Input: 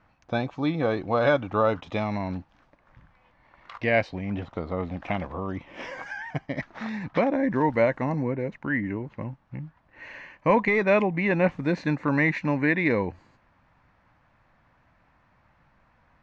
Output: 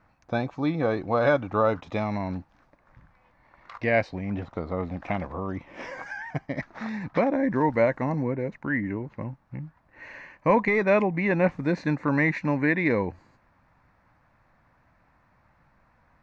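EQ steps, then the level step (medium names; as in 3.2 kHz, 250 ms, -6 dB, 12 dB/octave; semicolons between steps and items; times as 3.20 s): peaking EQ 3.1 kHz -7 dB 0.47 oct; 0.0 dB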